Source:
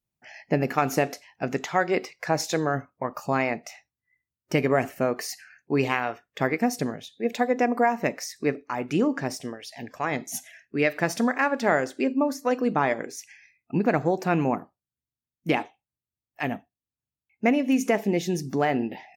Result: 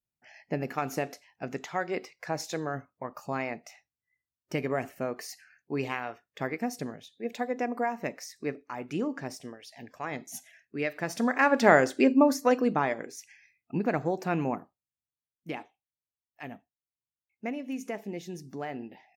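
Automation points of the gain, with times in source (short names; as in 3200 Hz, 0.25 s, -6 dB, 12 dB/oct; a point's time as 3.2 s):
11.04 s -8 dB
11.55 s +3 dB
12.37 s +3 dB
12.92 s -5.5 dB
14.47 s -5.5 dB
15.49 s -13 dB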